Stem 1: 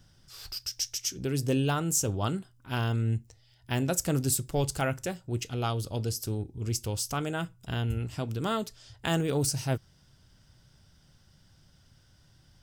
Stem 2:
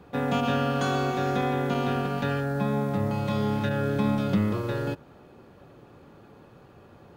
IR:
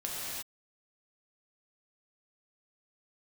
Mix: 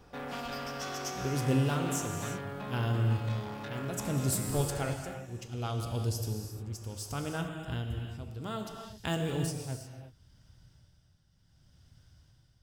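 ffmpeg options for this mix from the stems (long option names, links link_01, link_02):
-filter_complex "[0:a]equalizer=frequency=69:width_type=o:width=2.5:gain=6.5,tremolo=f=0.67:d=0.68,volume=-8dB,asplit=2[link_01][link_02];[link_02]volume=-4dB[link_03];[1:a]asoftclip=type=tanh:threshold=-28.5dB,lowshelf=frequency=320:gain=-9,volume=-4.5dB[link_04];[2:a]atrim=start_sample=2205[link_05];[link_03][link_05]afir=irnorm=-1:irlink=0[link_06];[link_01][link_04][link_06]amix=inputs=3:normalize=0"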